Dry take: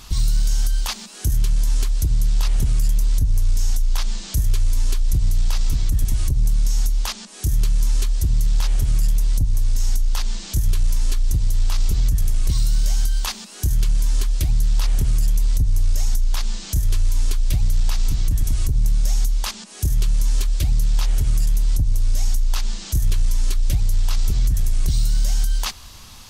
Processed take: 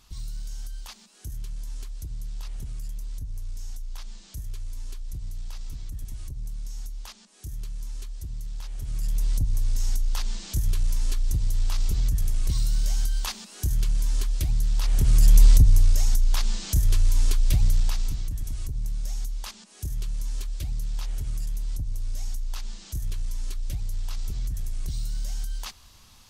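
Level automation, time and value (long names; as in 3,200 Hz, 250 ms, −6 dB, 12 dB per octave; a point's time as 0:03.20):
0:08.72 −16.5 dB
0:09.23 −5.5 dB
0:14.81 −5.5 dB
0:15.42 +6 dB
0:16.00 −1.5 dB
0:17.69 −1.5 dB
0:18.32 −11.5 dB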